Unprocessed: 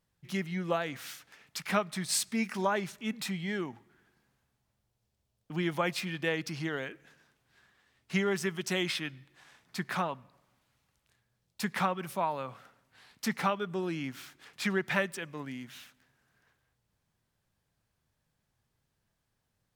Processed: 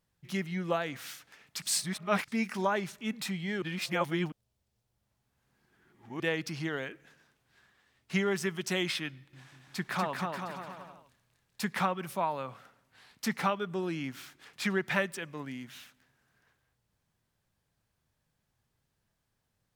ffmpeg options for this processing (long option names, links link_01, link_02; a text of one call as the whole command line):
ffmpeg -i in.wav -filter_complex "[0:a]asettb=1/sr,asplit=3[link_01][link_02][link_03];[link_01]atrim=end=9.094[link_04];[link_02]atrim=start=9.09:end=11.67,asetpts=PTS-STARTPTS,afade=type=in:duration=0.004:curve=qsin,afade=type=out:start_time=2.576:duration=0.004:curve=qsin,aecho=1:1:240|432|585.6|708.5|806.8|885.4|948.3:0.631|0.398|0.251|0.158|0.1|0.0631|0.0398,atrim=end_sample=113778[link_05];[link_03]atrim=start=11.666[link_06];[link_04][link_05]acrossfade=duration=0.004:curve1=hsin:curve2=qsin[link_07];[link_07][link_06]acrossfade=duration=0.004:curve1=qsin:curve2=hsin,asplit=5[link_08][link_09][link_10][link_11][link_12];[link_08]atrim=end=1.622[link_13];[link_09]atrim=start=1.618:end=2.282,asetpts=PTS-STARTPTS,areverse[link_14];[link_10]atrim=start=2.278:end=3.622[link_15];[link_11]atrim=start=3.618:end=6.202,asetpts=PTS-STARTPTS,areverse[link_16];[link_12]atrim=start=6.198[link_17];[link_13][link_14]acrossfade=duration=0.004:curve1=hsin:curve2=hsin[link_18];[link_18][link_15]acrossfade=duration=0.004:curve1=hsin:curve2=hsin[link_19];[link_19][link_16]acrossfade=duration=0.004:curve1=hsin:curve2=hsin[link_20];[link_20][link_17]acrossfade=duration=0.004:curve1=hsin:curve2=hsin" out.wav